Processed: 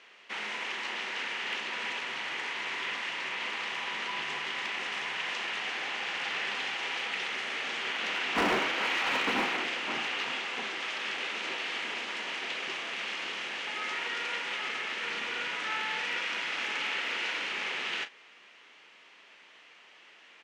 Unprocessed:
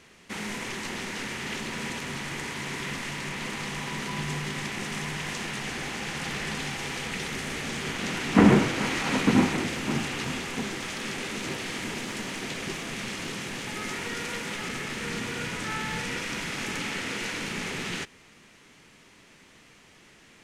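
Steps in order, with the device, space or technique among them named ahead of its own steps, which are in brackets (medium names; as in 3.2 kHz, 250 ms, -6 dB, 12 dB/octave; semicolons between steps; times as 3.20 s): megaphone (band-pass 600–3800 Hz; peaking EQ 2.9 kHz +4.5 dB 0.49 oct; hard clipper -23 dBFS, distortion -18 dB; doubling 37 ms -11.5 dB)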